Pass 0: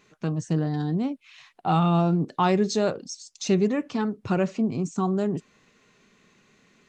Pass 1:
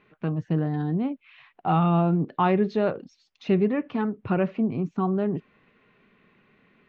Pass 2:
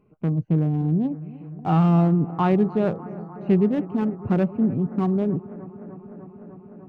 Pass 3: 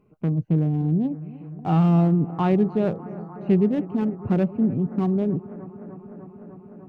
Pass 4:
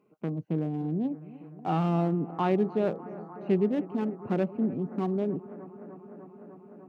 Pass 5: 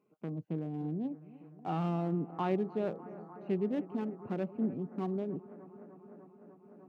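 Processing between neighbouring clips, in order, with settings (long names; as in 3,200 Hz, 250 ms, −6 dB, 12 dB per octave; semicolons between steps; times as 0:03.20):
low-pass filter 2,900 Hz 24 dB per octave
adaptive Wiener filter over 25 samples; low-shelf EQ 290 Hz +8.5 dB; bucket-brigade delay 300 ms, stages 4,096, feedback 83%, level −18 dB; level −1.5 dB
dynamic equaliser 1,200 Hz, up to −4 dB, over −39 dBFS, Q 1.1
high-pass filter 250 Hz 12 dB per octave; level −2.5 dB
amplitude modulation by smooth noise, depth 55%; level −4 dB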